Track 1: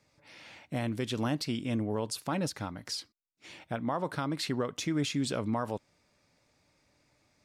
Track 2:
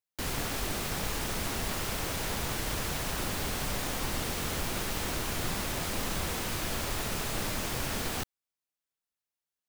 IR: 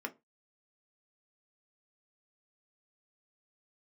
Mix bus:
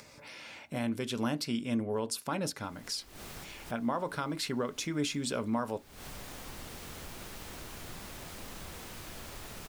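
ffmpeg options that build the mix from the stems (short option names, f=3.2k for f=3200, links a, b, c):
-filter_complex "[0:a]highshelf=f=7.1k:g=6,bandreject=f=1.9k:w=17,volume=-3.5dB,asplit=3[a][b][c];[b]volume=-6dB[d];[1:a]adelay=2450,volume=-12.5dB[e];[c]apad=whole_len=535037[f];[e][f]sidechaincompress=threshold=-58dB:ratio=3:attack=5.3:release=164[g];[2:a]atrim=start_sample=2205[h];[d][h]afir=irnorm=-1:irlink=0[i];[a][g][i]amix=inputs=3:normalize=0,acompressor=mode=upward:threshold=-41dB:ratio=2.5"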